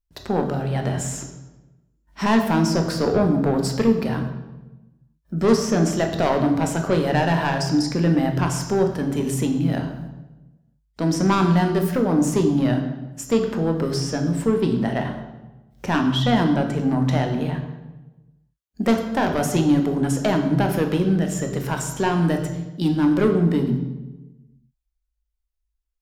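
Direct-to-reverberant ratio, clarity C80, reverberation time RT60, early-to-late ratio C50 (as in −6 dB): 4.0 dB, 9.5 dB, 1.1 s, 7.5 dB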